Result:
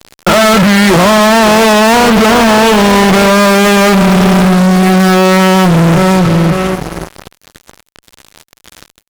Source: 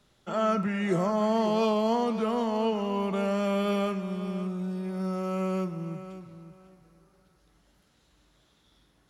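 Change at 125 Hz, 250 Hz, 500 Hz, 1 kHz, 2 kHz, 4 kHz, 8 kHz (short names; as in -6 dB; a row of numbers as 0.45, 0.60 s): +24.0 dB, +21.5 dB, +19.5 dB, +22.5 dB, +30.0 dB, +28.0 dB, n/a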